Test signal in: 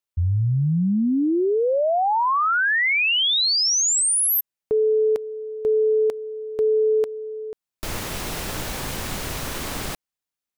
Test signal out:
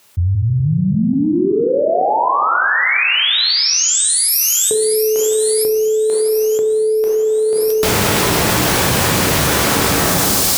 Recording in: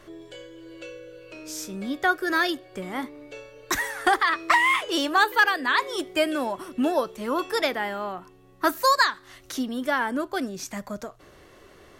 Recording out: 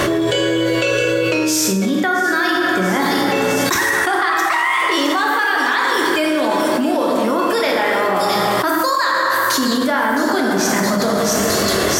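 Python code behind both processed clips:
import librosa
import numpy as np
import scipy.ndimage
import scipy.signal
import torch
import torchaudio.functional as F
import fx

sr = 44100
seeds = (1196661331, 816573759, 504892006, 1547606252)

y = scipy.signal.sosfilt(scipy.signal.butter(2, 84.0, 'highpass', fs=sr, output='sos'), x)
y = fx.echo_wet_highpass(y, sr, ms=664, feedback_pct=52, hz=4600.0, wet_db=-5.5)
y = fx.rev_plate(y, sr, seeds[0], rt60_s=2.1, hf_ratio=0.5, predelay_ms=0, drr_db=-1.0)
y = fx.env_flatten(y, sr, amount_pct=100)
y = y * librosa.db_to_amplitude(-3.0)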